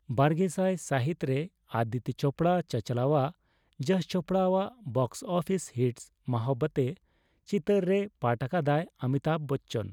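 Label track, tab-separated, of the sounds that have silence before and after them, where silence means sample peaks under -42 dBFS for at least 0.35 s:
3.800000	6.970000	sound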